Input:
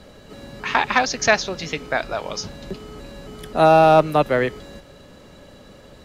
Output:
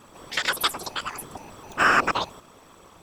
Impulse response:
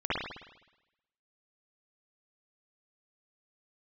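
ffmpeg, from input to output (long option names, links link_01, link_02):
-af "bandreject=frequency=4600:width=17,afftfilt=real='hypot(re,im)*cos(2*PI*random(0))':imag='hypot(re,im)*sin(2*PI*random(1))':win_size=512:overlap=0.75,asetrate=88200,aresample=44100"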